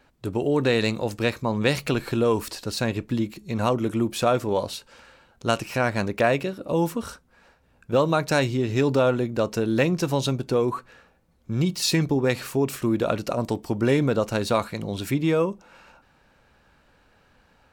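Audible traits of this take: noise floor -61 dBFS; spectral tilt -5.0 dB/oct

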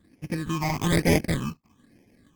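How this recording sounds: aliases and images of a low sample rate 1400 Hz, jitter 0%; phasing stages 8, 1.1 Hz, lowest notch 460–1200 Hz; Opus

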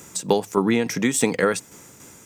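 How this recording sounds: tremolo saw down 3.5 Hz, depth 50%

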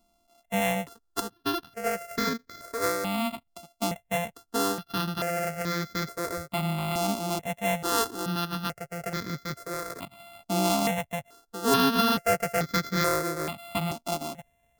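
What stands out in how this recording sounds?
a buzz of ramps at a fixed pitch in blocks of 64 samples; notches that jump at a steady rate 2.3 Hz 470–2800 Hz

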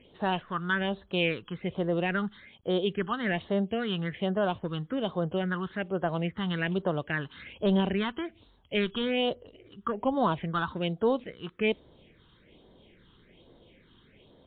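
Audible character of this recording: a quantiser's noise floor 12-bit, dither none; phasing stages 6, 1.2 Hz, lowest notch 580–2400 Hz; MP3

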